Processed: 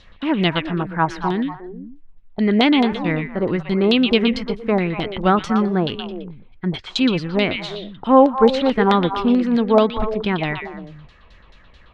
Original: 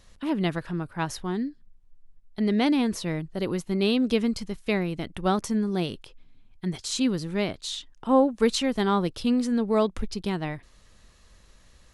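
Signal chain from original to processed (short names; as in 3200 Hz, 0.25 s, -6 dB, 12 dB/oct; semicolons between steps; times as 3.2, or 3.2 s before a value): LFO low-pass saw down 4.6 Hz 710–4000 Hz; delay with a stepping band-pass 0.119 s, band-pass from 2800 Hz, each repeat -1.4 oct, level -3 dB; gain +6.5 dB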